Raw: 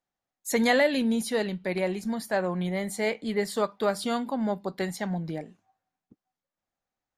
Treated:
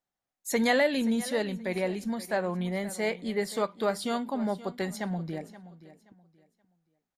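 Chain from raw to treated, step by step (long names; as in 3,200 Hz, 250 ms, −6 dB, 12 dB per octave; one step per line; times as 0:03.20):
repeating echo 526 ms, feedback 26%, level −16.5 dB
level −2 dB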